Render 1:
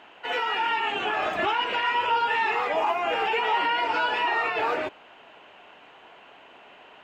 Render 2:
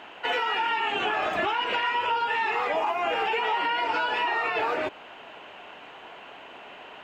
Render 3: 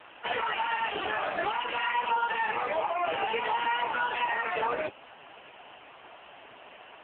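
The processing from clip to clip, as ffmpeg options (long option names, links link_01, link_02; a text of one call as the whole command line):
ffmpeg -i in.wav -af "acompressor=threshold=-29dB:ratio=6,volume=5.5dB" out.wav
ffmpeg -i in.wav -ar 8000 -c:a libopencore_amrnb -b:a 5150 out.amr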